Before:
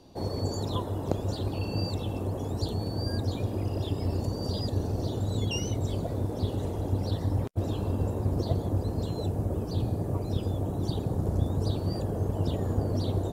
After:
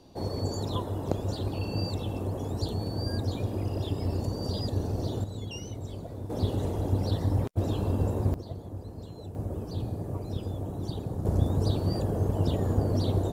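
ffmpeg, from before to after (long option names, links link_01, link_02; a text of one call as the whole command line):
ffmpeg -i in.wav -af "asetnsamples=nb_out_samples=441:pad=0,asendcmd='5.24 volume volume -8dB;6.3 volume volume 1.5dB;8.34 volume volume -11dB;9.35 volume volume -4dB;11.25 volume volume 2dB',volume=-0.5dB" out.wav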